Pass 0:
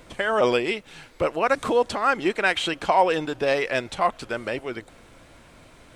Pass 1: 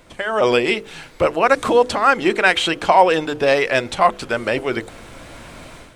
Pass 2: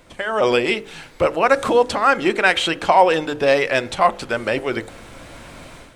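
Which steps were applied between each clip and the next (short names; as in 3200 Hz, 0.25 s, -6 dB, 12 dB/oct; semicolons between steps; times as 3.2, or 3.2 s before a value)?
notches 50/100/150/200/250/300/350/400/450/500 Hz; AGC gain up to 13 dB
reverb RT60 0.60 s, pre-delay 3 ms, DRR 17.5 dB; gain -1 dB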